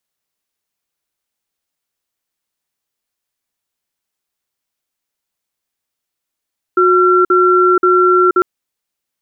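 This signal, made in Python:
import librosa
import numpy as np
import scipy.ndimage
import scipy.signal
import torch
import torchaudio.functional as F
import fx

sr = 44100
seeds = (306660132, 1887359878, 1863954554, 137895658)

y = fx.cadence(sr, length_s=1.65, low_hz=364.0, high_hz=1360.0, on_s=0.48, off_s=0.05, level_db=-10.0)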